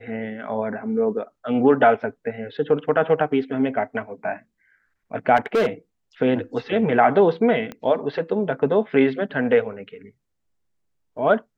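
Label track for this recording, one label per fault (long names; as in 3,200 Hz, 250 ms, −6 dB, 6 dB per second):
5.360000	5.670000	clipping −15.5 dBFS
7.720000	7.720000	click −19 dBFS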